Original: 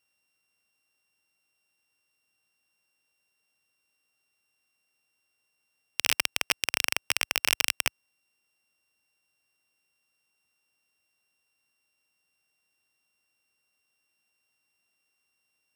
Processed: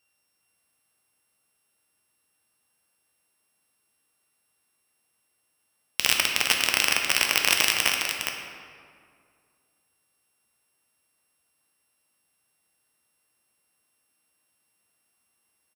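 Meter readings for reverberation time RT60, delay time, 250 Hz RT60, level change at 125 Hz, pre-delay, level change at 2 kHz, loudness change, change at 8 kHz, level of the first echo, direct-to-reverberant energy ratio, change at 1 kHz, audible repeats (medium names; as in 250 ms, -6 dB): 2.2 s, 409 ms, 2.4 s, +5.5 dB, 7 ms, +5.5 dB, +5.0 dB, +5.5 dB, -6.5 dB, 0.0 dB, +6.5 dB, 1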